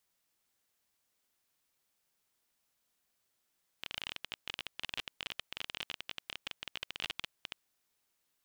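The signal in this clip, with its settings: random clicks 24/s -21 dBFS 3.85 s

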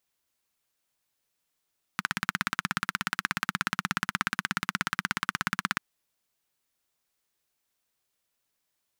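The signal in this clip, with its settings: single-cylinder engine model, steady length 3.79 s, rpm 2000, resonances 190/1400 Hz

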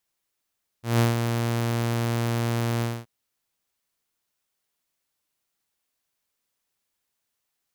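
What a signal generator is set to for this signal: ADSR saw 117 Hz, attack 0.164 s, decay 0.151 s, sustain -6.5 dB, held 1.99 s, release 0.235 s -14 dBFS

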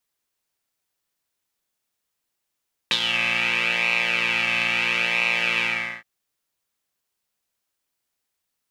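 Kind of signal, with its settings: synth patch with pulse-width modulation A#2, oscillator 2 square, interval +7 st, detune 25 cents, oscillator 2 level -3.5 dB, filter bandpass, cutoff 1900 Hz, Q 6.3, filter envelope 1 oct, attack 1.1 ms, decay 0.06 s, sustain -6 dB, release 0.41 s, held 2.71 s, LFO 0.75 Hz, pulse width 16%, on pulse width 9%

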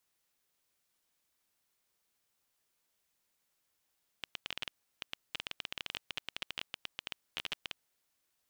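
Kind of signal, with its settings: random clicks 14/s -19.5 dBFS 3.67 s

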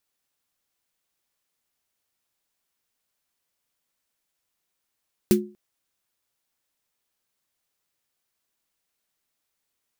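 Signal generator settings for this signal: snare drum length 0.24 s, tones 210 Hz, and 360 Hz, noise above 1300 Hz, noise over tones -8.5 dB, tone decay 0.34 s, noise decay 0.12 s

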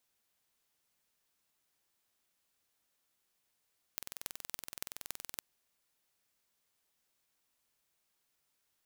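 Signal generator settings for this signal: pulse train 21.3/s, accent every 6, -9.5 dBFS 1.42 s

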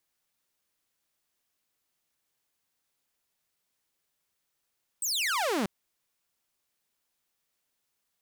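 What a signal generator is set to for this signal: laser zap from 8600 Hz, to 180 Hz, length 0.64 s saw, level -23.5 dB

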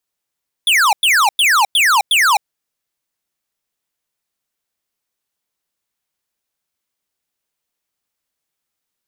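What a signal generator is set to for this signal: burst of laser zaps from 3600 Hz, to 760 Hz, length 0.26 s square, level -12 dB, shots 5, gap 0.10 s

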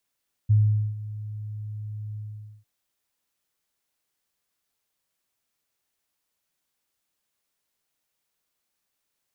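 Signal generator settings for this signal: ADSR sine 106 Hz, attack 18 ms, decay 0.44 s, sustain -17.5 dB, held 1.67 s, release 0.482 s -14 dBFS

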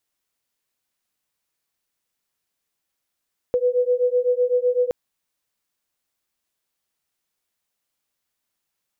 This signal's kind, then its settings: beating tones 491 Hz, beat 7.9 Hz, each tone -20 dBFS 1.37 s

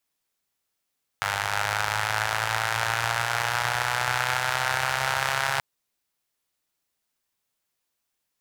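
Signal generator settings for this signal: four-cylinder engine model, changing speed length 4.38 s, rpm 3000, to 4100, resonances 110/870/1400 Hz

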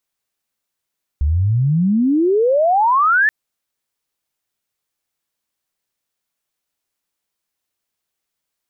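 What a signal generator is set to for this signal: chirp logarithmic 68 Hz -> 1800 Hz -13 dBFS -> -10.5 dBFS 2.08 s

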